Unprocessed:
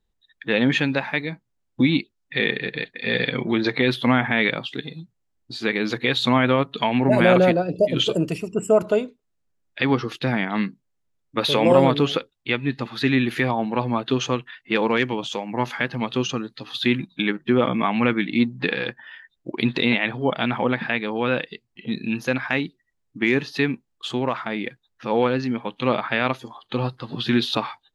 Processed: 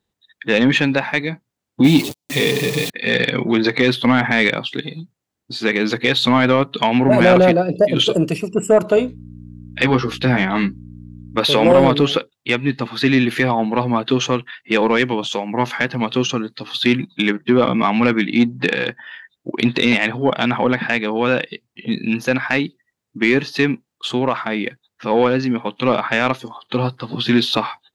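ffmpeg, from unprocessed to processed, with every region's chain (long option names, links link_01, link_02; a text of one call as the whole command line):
ffmpeg -i in.wav -filter_complex "[0:a]asettb=1/sr,asplit=3[link_01][link_02][link_03];[link_01]atrim=end=1.844[link_04];[link_02]atrim=start=1.84:end=2.9,asetpts=PTS-STARTPTS,afade=type=in:duration=0.004:curve=qsin,afade=type=out:start_time=1.056:duration=0.004:curve=qsin,aeval=exprs='val(0)+0.5*0.0596*sgn(val(0))':channel_layout=same,equalizer=frequency=1500:width=1.6:gain=-13.5,aecho=1:1:6.9:0.51,atrim=end_sample=46746[link_05];[link_03]atrim=start=2.896[link_06];[link_04][link_05]acrossfade=duration=0.004:curve1=hsin:curve2=qsin[link_07];[link_07][link_06]acrossfade=duration=0.004:curve1=qsin:curve2=hsin,asettb=1/sr,asplit=3[link_08][link_09][link_10];[link_08]atrim=end=8.954[link_11];[link_09]atrim=start=8.95:end=11.38,asetpts=PTS-STARTPTS,afade=type=in:duration=0.004:curve=qsin,afade=type=out:start_time=2.426:duration=0.004:curve=qsin,asplit=2[link_12][link_13];[link_13]adelay=16,volume=-5dB[link_14];[link_12][link_14]amix=inputs=2:normalize=0,atrim=end_sample=107163,aeval=exprs='val(0)+0.0141*(sin(2*PI*60*n/s)+sin(2*PI*2*60*n/s)/2+sin(2*PI*3*60*n/s)/3+sin(2*PI*4*60*n/s)/4+sin(2*PI*5*60*n/s)/5)':channel_layout=same[link_15];[link_10]atrim=start=11.376[link_16];[link_11][link_15]acrossfade=duration=0.004:curve1=hsin:curve2=qsin[link_17];[link_17][link_16]acrossfade=duration=0.004:curve1=qsin:curve2=hsin,highpass=100,acontrast=78,volume=-1dB" out.wav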